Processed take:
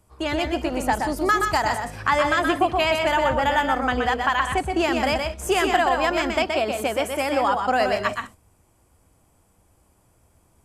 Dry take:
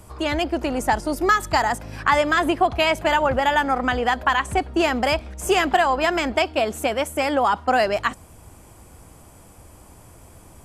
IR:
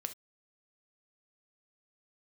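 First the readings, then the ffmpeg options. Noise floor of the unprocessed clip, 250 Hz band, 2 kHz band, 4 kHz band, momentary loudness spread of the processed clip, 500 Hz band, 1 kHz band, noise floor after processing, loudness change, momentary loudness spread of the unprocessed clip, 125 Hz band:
−48 dBFS, −1.0 dB, −1.0 dB, −1.0 dB, 5 LU, −1.0 dB, −1.0 dB, −62 dBFS, −1.0 dB, 5 LU, −1.0 dB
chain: -filter_complex "[0:a]agate=range=-13dB:threshold=-35dB:ratio=16:detection=peak,asplit=2[link_01][link_02];[1:a]atrim=start_sample=2205,adelay=124[link_03];[link_02][link_03]afir=irnorm=-1:irlink=0,volume=-3dB[link_04];[link_01][link_04]amix=inputs=2:normalize=0,volume=-2.5dB"

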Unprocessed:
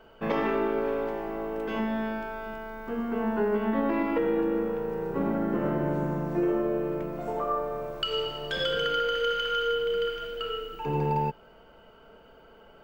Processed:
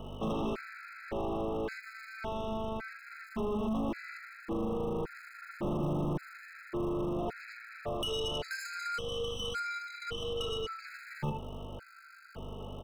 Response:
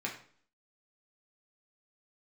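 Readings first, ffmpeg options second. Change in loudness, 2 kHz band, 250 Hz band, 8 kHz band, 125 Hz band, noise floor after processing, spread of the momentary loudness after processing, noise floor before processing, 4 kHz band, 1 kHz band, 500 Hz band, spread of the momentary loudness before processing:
−7.5 dB, −6.0 dB, −7.5 dB, can't be measured, −4.0 dB, −53 dBFS, 13 LU, −54 dBFS, −6.0 dB, −8.5 dB, −9.0 dB, 7 LU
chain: -filter_complex "[0:a]aemphasis=mode=reproduction:type=50fm,aresample=11025,aresample=44100,aecho=1:1:37|74:0.15|0.2,acrossover=split=220[link_01][link_02];[link_02]acompressor=threshold=-33dB:ratio=8[link_03];[link_01][link_03]amix=inputs=2:normalize=0,aeval=exprs='val(0)+0.00631*(sin(2*PI*50*n/s)+sin(2*PI*2*50*n/s)/2+sin(2*PI*3*50*n/s)/3+sin(2*PI*4*50*n/s)/4+sin(2*PI*5*50*n/s)/5)':channel_layout=same,acontrast=62,asplit=2[link_04][link_05];[1:a]atrim=start_sample=2205[link_06];[link_05][link_06]afir=irnorm=-1:irlink=0,volume=-18.5dB[link_07];[link_04][link_07]amix=inputs=2:normalize=0,volume=17dB,asoftclip=hard,volume=-17dB,bass=frequency=250:gain=-1,treble=frequency=4000:gain=14,acrossover=split=110[link_08][link_09];[link_08]acrusher=bits=5:dc=4:mix=0:aa=0.000001[link_10];[link_09]asoftclip=type=tanh:threshold=-31dB[link_11];[link_10][link_11]amix=inputs=2:normalize=0,afftfilt=real='re*gt(sin(2*PI*0.89*pts/sr)*(1-2*mod(floor(b*sr/1024/1300),2)),0)':imag='im*gt(sin(2*PI*0.89*pts/sr)*(1-2*mod(floor(b*sr/1024/1300),2)),0)':win_size=1024:overlap=0.75"

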